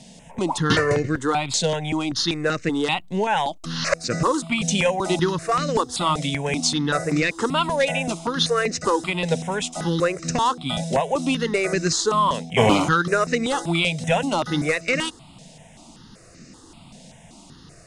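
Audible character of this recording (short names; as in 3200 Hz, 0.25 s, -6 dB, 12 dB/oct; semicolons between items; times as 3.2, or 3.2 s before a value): notches that jump at a steady rate 5.2 Hz 330–3300 Hz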